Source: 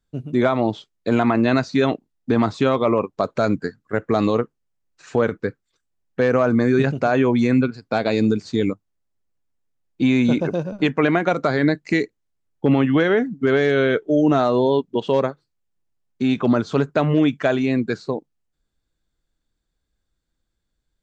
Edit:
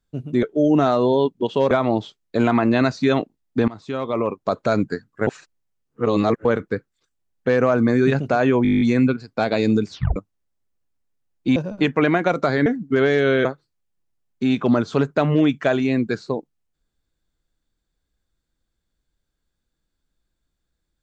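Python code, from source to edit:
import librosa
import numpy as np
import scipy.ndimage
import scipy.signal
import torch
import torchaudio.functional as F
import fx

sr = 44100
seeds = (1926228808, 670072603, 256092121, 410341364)

y = fx.edit(x, sr, fx.fade_in_from(start_s=2.4, length_s=0.84, floor_db=-21.5),
    fx.reverse_span(start_s=3.99, length_s=1.18),
    fx.stutter(start_s=7.35, slice_s=0.02, count=10),
    fx.tape_stop(start_s=8.45, length_s=0.25),
    fx.cut(start_s=10.1, length_s=0.47),
    fx.cut(start_s=11.67, length_s=1.5),
    fx.move(start_s=13.96, length_s=1.28, to_s=0.43), tone=tone)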